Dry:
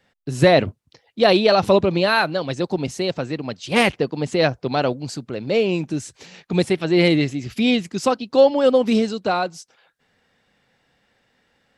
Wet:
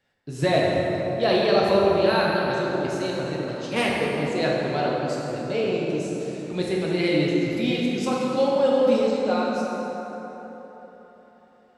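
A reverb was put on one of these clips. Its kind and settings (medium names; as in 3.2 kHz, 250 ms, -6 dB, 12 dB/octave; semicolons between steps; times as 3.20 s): plate-style reverb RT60 4 s, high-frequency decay 0.5×, DRR -4.5 dB; trim -9.5 dB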